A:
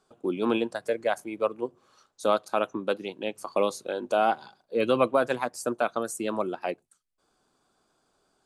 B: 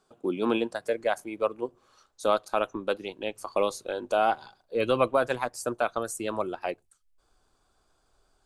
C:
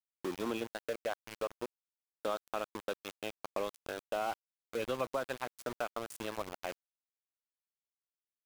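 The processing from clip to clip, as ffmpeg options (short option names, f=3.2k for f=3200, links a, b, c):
-af "asubboost=boost=9.5:cutoff=63"
-af "aeval=exprs='val(0)*gte(abs(val(0)),0.0355)':c=same,acompressor=threshold=-31dB:ratio=2,volume=-5dB"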